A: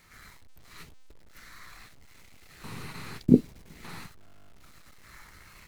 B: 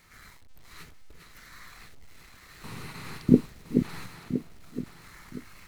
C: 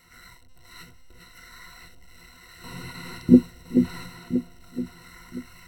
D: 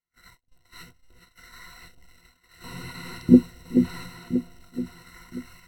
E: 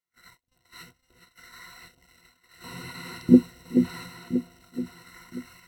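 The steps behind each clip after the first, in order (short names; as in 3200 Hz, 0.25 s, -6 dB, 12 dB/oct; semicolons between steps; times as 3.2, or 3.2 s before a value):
regenerating reverse delay 0.508 s, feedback 53%, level -6 dB
ripple EQ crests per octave 2, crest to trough 17 dB; gain -1 dB
gate -47 dBFS, range -37 dB
HPF 140 Hz 6 dB/oct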